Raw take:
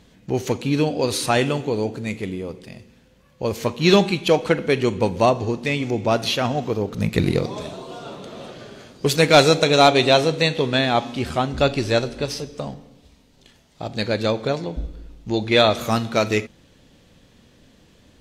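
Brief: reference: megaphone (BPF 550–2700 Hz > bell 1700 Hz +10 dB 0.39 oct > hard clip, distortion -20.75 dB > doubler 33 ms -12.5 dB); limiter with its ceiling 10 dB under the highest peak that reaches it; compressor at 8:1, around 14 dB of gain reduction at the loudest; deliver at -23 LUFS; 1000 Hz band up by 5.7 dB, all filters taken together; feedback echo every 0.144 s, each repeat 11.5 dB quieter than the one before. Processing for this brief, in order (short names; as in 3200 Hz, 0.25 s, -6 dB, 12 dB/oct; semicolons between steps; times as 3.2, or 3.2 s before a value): bell 1000 Hz +8.5 dB; compressor 8:1, threshold -19 dBFS; limiter -17 dBFS; BPF 550–2700 Hz; bell 1700 Hz +10 dB 0.39 oct; feedback echo 0.144 s, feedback 27%, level -11.5 dB; hard clip -20.5 dBFS; doubler 33 ms -12.5 dB; gain +8.5 dB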